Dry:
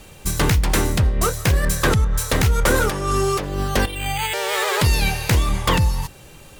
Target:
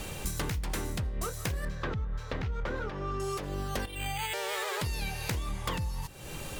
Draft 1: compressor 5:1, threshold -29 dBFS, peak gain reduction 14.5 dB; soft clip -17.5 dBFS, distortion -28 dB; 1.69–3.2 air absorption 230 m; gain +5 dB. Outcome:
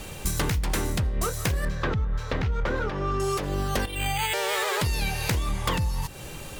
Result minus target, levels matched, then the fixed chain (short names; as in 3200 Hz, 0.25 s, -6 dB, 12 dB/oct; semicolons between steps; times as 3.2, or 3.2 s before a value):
compressor: peak gain reduction -7.5 dB
compressor 5:1, threshold -38.5 dBFS, peak gain reduction 22 dB; soft clip -17.5 dBFS, distortion -42 dB; 1.69–3.2 air absorption 230 m; gain +5 dB